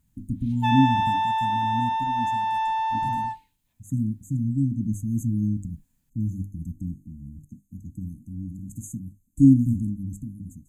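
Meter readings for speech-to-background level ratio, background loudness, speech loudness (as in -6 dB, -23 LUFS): -1.5 dB, -25.0 LUFS, -26.5 LUFS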